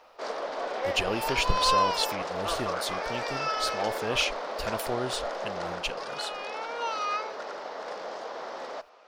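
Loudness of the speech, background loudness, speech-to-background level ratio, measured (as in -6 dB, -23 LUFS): -32.0 LUFS, -32.0 LUFS, 0.0 dB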